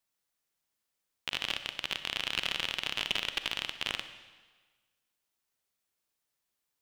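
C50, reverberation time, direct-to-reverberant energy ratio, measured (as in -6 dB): 10.5 dB, 1.4 s, 9.5 dB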